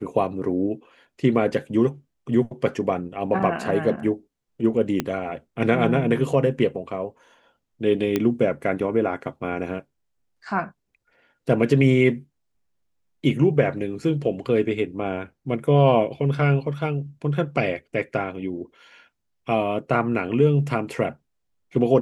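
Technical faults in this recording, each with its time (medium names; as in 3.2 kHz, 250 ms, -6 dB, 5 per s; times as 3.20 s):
5.00 s: pop -9 dBFS
8.16 s: pop -9 dBFS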